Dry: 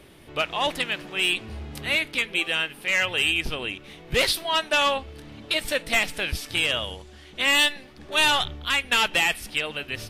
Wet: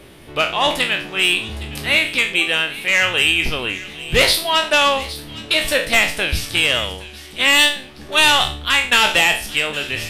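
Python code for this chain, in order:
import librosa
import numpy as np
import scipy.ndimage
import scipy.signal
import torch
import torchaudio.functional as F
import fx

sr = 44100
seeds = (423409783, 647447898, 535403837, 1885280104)

p1 = fx.spec_trails(x, sr, decay_s=0.38)
p2 = p1 + fx.echo_wet_highpass(p1, sr, ms=813, feedback_pct=31, hz=2400.0, wet_db=-14, dry=0)
y = p2 * librosa.db_to_amplitude(6.0)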